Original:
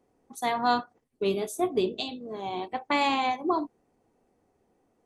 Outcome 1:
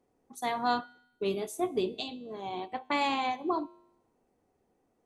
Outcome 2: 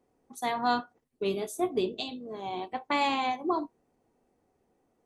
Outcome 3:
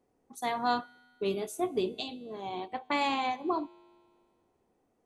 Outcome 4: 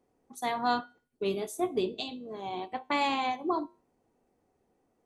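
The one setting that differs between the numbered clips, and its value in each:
tuned comb filter, decay: 0.86, 0.15, 2.1, 0.39 seconds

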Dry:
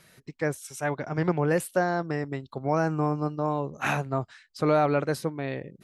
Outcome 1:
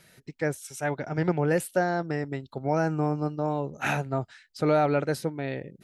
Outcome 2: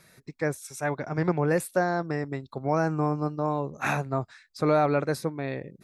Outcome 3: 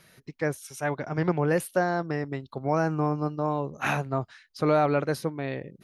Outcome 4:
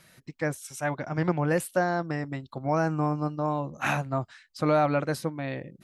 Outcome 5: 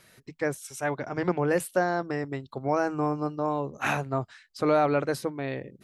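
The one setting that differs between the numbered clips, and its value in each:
notch filter, centre frequency: 1,100, 3,000, 7,700, 420, 160 Hertz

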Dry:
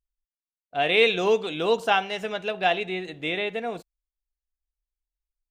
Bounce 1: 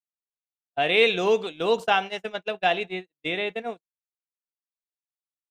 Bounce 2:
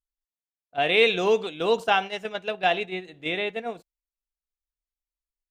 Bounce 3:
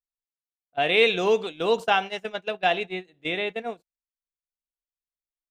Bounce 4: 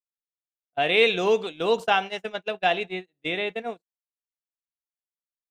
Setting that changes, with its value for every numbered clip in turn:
noise gate, range: −57, −8, −21, −38 decibels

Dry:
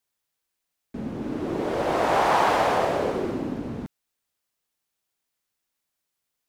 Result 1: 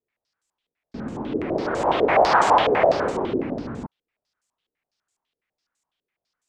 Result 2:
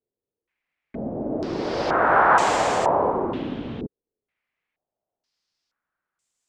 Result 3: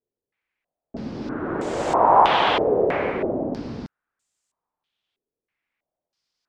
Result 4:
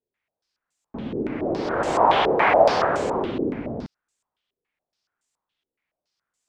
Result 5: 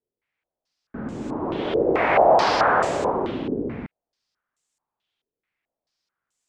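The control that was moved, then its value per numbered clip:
low-pass on a step sequencer, speed: 12, 2.1, 3.1, 7.1, 4.6 Hertz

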